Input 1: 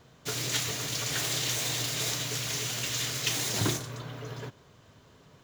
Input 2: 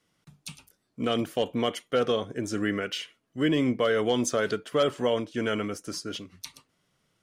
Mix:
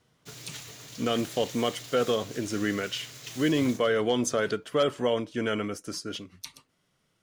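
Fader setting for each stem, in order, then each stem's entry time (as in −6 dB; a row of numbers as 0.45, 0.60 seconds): −12.5, −0.5 decibels; 0.00, 0.00 seconds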